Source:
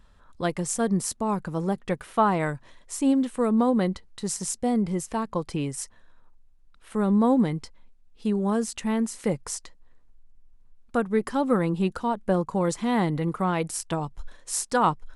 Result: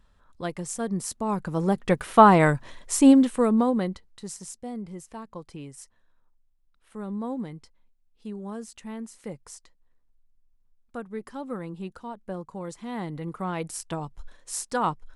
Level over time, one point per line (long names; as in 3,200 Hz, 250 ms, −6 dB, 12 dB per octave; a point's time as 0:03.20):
0:00.90 −5 dB
0:02.14 +7.5 dB
0:03.05 +7.5 dB
0:03.89 −4 dB
0:04.63 −11.5 dB
0:12.75 −11.5 dB
0:13.68 −4 dB